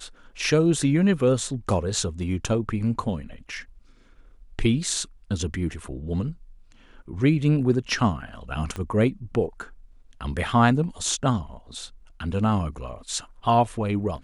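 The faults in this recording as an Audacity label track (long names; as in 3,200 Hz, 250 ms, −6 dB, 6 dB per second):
8.760000	8.760000	click −19 dBFS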